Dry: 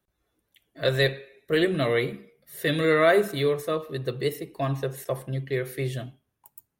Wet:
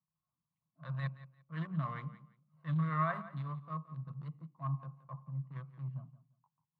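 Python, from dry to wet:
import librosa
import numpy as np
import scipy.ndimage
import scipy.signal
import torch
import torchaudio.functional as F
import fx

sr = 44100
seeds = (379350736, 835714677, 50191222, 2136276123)

p1 = fx.wiener(x, sr, points=25)
p2 = fx.transient(p1, sr, attack_db=-10, sustain_db=-6)
p3 = fx.double_bandpass(p2, sr, hz=410.0, octaves=2.8)
p4 = p3 + fx.echo_feedback(p3, sr, ms=173, feedback_pct=22, wet_db=-16.0, dry=0)
y = p4 * 10.0 ** (2.0 / 20.0)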